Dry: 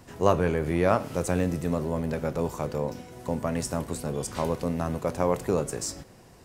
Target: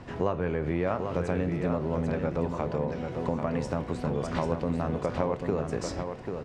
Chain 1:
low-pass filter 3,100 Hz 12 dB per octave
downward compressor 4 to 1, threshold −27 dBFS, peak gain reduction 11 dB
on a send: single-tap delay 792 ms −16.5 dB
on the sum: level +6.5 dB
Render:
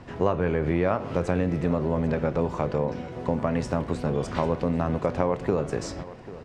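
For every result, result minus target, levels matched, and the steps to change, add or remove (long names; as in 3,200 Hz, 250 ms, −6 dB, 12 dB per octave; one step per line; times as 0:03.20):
echo-to-direct −10.5 dB; downward compressor: peak gain reduction −4.5 dB
change: single-tap delay 792 ms −6 dB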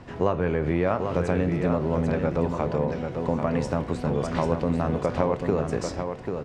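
downward compressor: peak gain reduction −4.5 dB
change: downward compressor 4 to 1, threshold −33 dBFS, peak gain reduction 15.5 dB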